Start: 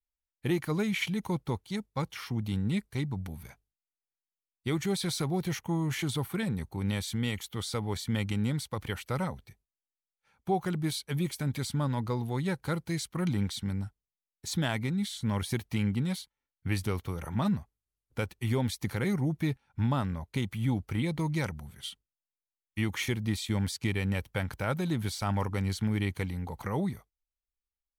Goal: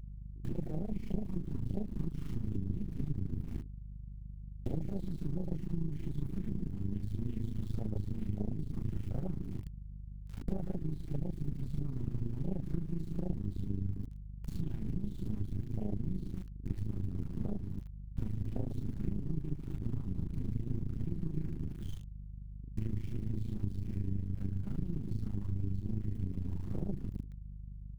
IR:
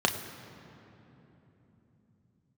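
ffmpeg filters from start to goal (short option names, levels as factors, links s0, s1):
-filter_complex "[0:a]aeval=exprs='val(0)+0.5*0.0106*sgn(val(0))':c=same,aeval=exprs='(tanh(39.8*val(0)+0.65)-tanh(0.65))/39.8':c=same,highshelf=f=5200:g=-9,asplit=2[s0][s1];[s1]adelay=250.7,volume=0.126,highshelf=f=4000:g=-5.64[s2];[s0][s2]amix=inputs=2:normalize=0,asplit=2[s3][s4];[1:a]atrim=start_sample=2205,afade=t=out:st=0.29:d=0.01,atrim=end_sample=13230,adelay=39[s5];[s4][s5]afir=irnorm=-1:irlink=0,volume=0.316[s6];[s3][s6]amix=inputs=2:normalize=0,acrusher=bits=4:dc=4:mix=0:aa=0.000001,lowshelf=f=280:g=11,acompressor=threshold=0.0158:ratio=6,aeval=exprs='val(0)+0.00398*(sin(2*PI*50*n/s)+sin(2*PI*2*50*n/s)/2+sin(2*PI*3*50*n/s)/3+sin(2*PI*4*50*n/s)/4+sin(2*PI*5*50*n/s)/5)':c=same,tremolo=f=27:d=0.621,afwtdn=0.00891,volume=2.37"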